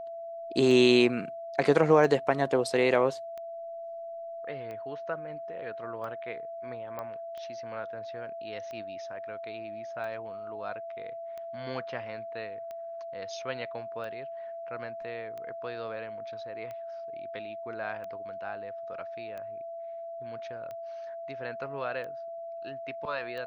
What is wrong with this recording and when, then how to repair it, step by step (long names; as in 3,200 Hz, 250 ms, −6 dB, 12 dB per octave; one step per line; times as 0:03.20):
scratch tick 45 rpm
whistle 670 Hz −37 dBFS
0:06.99: click −24 dBFS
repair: click removal
notch filter 670 Hz, Q 30